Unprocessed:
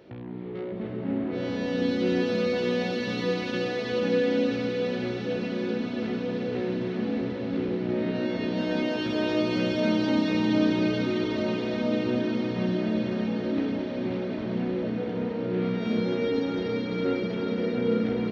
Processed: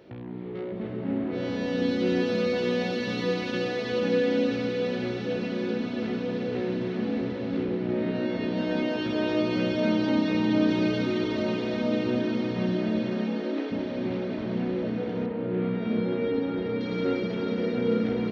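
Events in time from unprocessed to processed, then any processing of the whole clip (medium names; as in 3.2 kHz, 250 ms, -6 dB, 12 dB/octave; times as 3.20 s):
7.63–10.69 s: treble shelf 5.8 kHz -8 dB
13.00–13.70 s: high-pass 98 Hz -> 350 Hz 24 dB/octave
15.26–16.81 s: distance through air 270 m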